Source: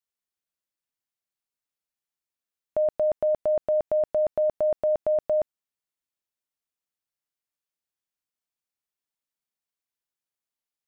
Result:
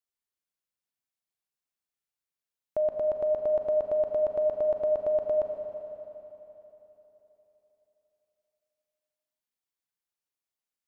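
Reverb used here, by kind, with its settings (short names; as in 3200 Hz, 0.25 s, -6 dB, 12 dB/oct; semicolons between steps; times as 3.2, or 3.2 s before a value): Schroeder reverb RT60 3.7 s, combs from 30 ms, DRR 4 dB; gain -3.5 dB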